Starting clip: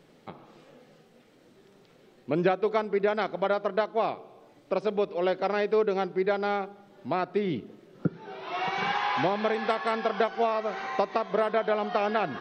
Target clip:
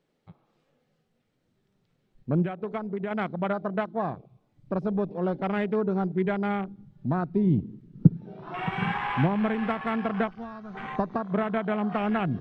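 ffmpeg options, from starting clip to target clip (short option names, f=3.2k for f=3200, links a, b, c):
-filter_complex "[0:a]asubboost=boost=10.5:cutoff=150,afwtdn=0.0178,asettb=1/sr,asplit=3[a][b][c];[a]atrim=end=2.424[d];[b]atrim=start=2.42:end=3.11,asetpts=PTS-STARTPTS,afade=t=in:d=0.004:c=qsin,afade=t=out:st=0.686:d=0.004:c=qsin,acompressor=threshold=-27dB:ratio=12[e];[c]atrim=start=3.106[f];[d][e]acrossfade=d=0.004:c1=hsin:c2=qsin[g];[g][f]acrossfade=d=0.004:c1=qsin:c2=hsin,asplit=3[h][i][j];[h]afade=t=out:st=10.29:d=0.02[k];[i]equalizer=f=570:w=0.42:g=-14.5,afade=t=in:st=10.29:d=0.02,afade=t=out:st=10.74:d=0.02[l];[j]afade=t=in:st=10.74:d=0.02[m];[k][l][m]amix=inputs=3:normalize=0"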